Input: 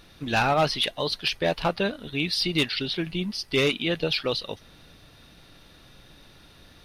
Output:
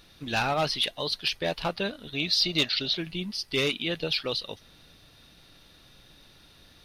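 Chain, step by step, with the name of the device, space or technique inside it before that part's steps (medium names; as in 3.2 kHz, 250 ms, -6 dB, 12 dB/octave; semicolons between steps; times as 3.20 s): presence and air boost (peaking EQ 4.2 kHz +4 dB 1.4 oct; treble shelf 9.8 kHz +5.5 dB); 2.13–2.98 s: graphic EQ with 31 bands 630 Hz +12 dB, 1.25 kHz +4 dB, 4 kHz +5 dB, 6.3 kHz +6 dB, 10 kHz -9 dB; trim -5 dB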